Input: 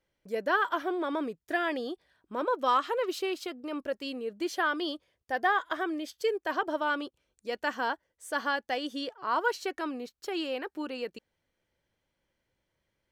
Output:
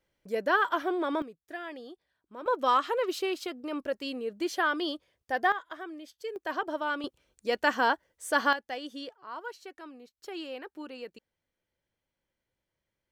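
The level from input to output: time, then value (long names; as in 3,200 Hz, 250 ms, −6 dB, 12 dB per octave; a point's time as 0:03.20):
+1.5 dB
from 0:01.22 −10 dB
from 0:02.46 +1 dB
from 0:05.52 −9 dB
from 0:06.36 −2 dB
from 0:07.04 +5.5 dB
from 0:08.53 −5 dB
from 0:09.15 −12 dB
from 0:10.17 −6 dB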